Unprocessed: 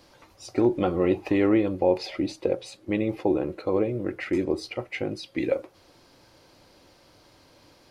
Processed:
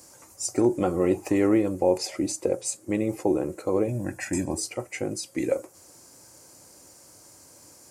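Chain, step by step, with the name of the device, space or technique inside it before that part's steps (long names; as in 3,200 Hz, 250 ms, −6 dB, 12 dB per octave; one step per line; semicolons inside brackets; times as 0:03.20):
budget condenser microphone (high-pass filter 64 Hz; high shelf with overshoot 5,300 Hz +14 dB, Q 3)
0:03.88–0:04.58: comb filter 1.2 ms, depth 89%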